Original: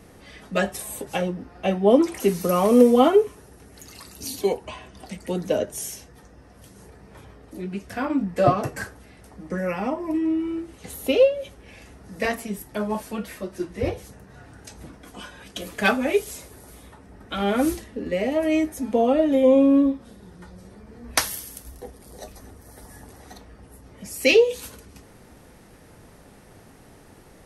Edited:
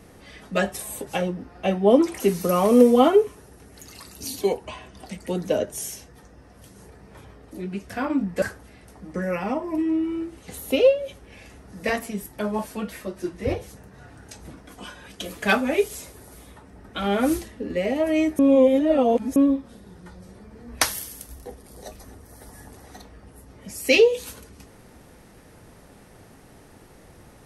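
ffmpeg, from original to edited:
ffmpeg -i in.wav -filter_complex "[0:a]asplit=4[link_01][link_02][link_03][link_04];[link_01]atrim=end=8.422[link_05];[link_02]atrim=start=8.778:end=18.752[link_06];[link_03]atrim=start=18.748:end=19.722,asetpts=PTS-STARTPTS,areverse[link_07];[link_04]atrim=start=19.718[link_08];[link_05][link_06]acrossfade=duration=0.004:curve1=hsin:curve2=hsin[link_09];[link_09][link_07]acrossfade=duration=0.004:curve1=hsin:curve2=hsin[link_10];[link_10][link_08]acrossfade=duration=0.004:curve1=hsin:curve2=hsin" out.wav

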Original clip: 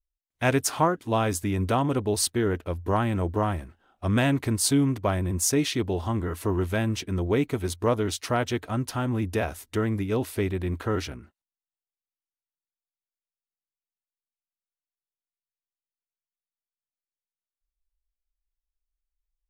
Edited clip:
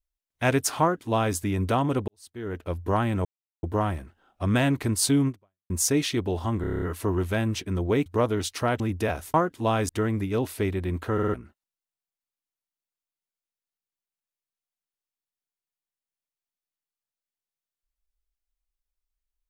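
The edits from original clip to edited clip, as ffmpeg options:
ffmpeg -i in.wav -filter_complex "[0:a]asplit=19[link_01][link_02][link_03][link_04][link_05][link_06][link_07][link_08][link_09][link_10][link_11][link_12][link_13][link_14][link_15][link_16][link_17][link_18][link_19];[link_01]atrim=end=2.08,asetpts=PTS-STARTPTS,afade=type=out:start_time=2.076:duration=0.004:curve=hsin[link_20];[link_02]atrim=start=2.08:end=3.25,asetpts=PTS-STARTPTS,afade=type=in:duration=0.62:curve=qua,afade=type=out:start_time=1.166:duration=0.004:curve=hsin,apad=pad_dur=0.38[link_21];[link_03]atrim=start=3.25:end=5.32,asetpts=PTS-STARTPTS,afade=type=in:duration=0.004:curve=hsin,afade=type=out:start_time=1.65:duration=0.42:curve=exp[link_22];[link_04]atrim=start=5.32:end=6.262,asetpts=PTS-STARTPTS,afade=type=in:duration=0.004:curve=hsin[link_23];[link_05]atrim=start=6.228:end=6.262[link_24];[link_06]atrim=start=6.228:end=6.262[link_25];[link_07]atrim=start=6.228:end=6.262[link_26];[link_08]atrim=start=6.228:end=6.262[link_27];[link_09]atrim=start=6.228:end=6.262[link_28];[link_10]atrim=start=6.228:end=6.262[link_29];[link_11]atrim=start=6.228:end=7.472[link_30];[link_12]atrim=start=7.738:end=8.482[link_31];[link_13]atrim=start=9.128:end=9.672[link_32];[link_14]atrim=start=0.808:end=1.362[link_33];[link_15]atrim=start=9.668:end=10.972[link_34];[link_16]atrim=start=10.918:end=10.972[link_35];[link_17]atrim=start=10.918:end=10.972[link_36];[link_18]atrim=start=10.918:end=10.972[link_37];[link_19]atrim=start=11.118[link_38];[link_20][link_21][link_22][link_23]concat=n=4:v=0:a=1[link_39];[link_39][link_24]acrossfade=duration=0.004:curve1=hsin:curve2=hsin[link_40];[link_40][link_25]acrossfade=duration=0.004:curve1=hsin:curve2=hsin[link_41];[link_41][link_26]acrossfade=duration=0.004:curve1=hsin:curve2=hsin[link_42];[link_42][link_27]acrossfade=duration=0.004:curve1=hsin:curve2=hsin[link_43];[link_43][link_28]acrossfade=duration=0.004:curve1=hsin:curve2=hsin[link_44];[link_44][link_29]acrossfade=duration=0.004:curve1=hsin:curve2=hsin[link_45];[link_45][link_30]acrossfade=duration=0.004:curve1=hsin:curve2=hsin[link_46];[link_46][link_31]acrossfade=duration=0.004:curve1=hsin:curve2=hsin[link_47];[link_47][link_32]acrossfade=duration=0.004:curve1=hsin:curve2=hsin[link_48];[link_48][link_33]acrossfade=duration=0.004:curve1=hsin:curve2=hsin[link_49];[link_49][link_34]acrossfade=duration=0.004:curve1=hsin:curve2=hsin[link_50];[link_50][link_35]acrossfade=duration=0.004:curve1=hsin:curve2=hsin[link_51];[link_51][link_36]acrossfade=duration=0.004:curve1=hsin:curve2=hsin[link_52];[link_52][link_37]acrossfade=duration=0.004:curve1=hsin:curve2=hsin[link_53];[link_53][link_38]acrossfade=duration=0.004:curve1=hsin:curve2=hsin" out.wav

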